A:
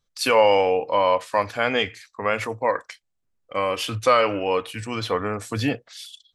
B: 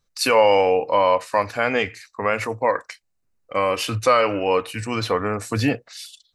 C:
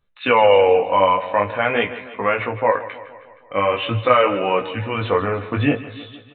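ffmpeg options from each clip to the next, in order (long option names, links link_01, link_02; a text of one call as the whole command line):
ffmpeg -i in.wav -filter_complex "[0:a]bandreject=frequency=3300:width=6.1,asplit=2[link_01][link_02];[link_02]alimiter=limit=-13.5dB:level=0:latency=1:release=417,volume=0.5dB[link_03];[link_01][link_03]amix=inputs=2:normalize=0,volume=-2.5dB" out.wav
ffmpeg -i in.wav -af "aecho=1:1:157|314|471|628|785|942:0.178|0.103|0.0598|0.0347|0.0201|0.0117,flanger=delay=15.5:depth=5.5:speed=0.46,aresample=8000,aresample=44100,volume=5dB" out.wav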